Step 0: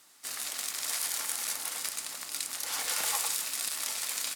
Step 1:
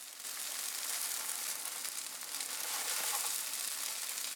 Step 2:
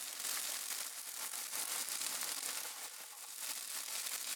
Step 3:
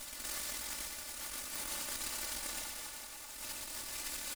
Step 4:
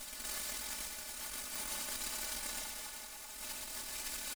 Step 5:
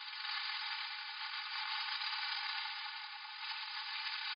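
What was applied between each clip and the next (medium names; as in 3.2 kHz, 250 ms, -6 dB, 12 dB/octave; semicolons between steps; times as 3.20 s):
high-pass 160 Hz 12 dB/octave; on a send: reverse echo 391 ms -6.5 dB; on the sum: trim -5.5 dB
compressor with a negative ratio -42 dBFS, ratio -0.5
comb filter that takes the minimum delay 3.4 ms; reverse bouncing-ball echo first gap 120 ms, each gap 1.5×, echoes 5
comb 4.7 ms, depth 38%; trim -1 dB
brick-wall FIR band-pass 780–5000 Hz; trim +6.5 dB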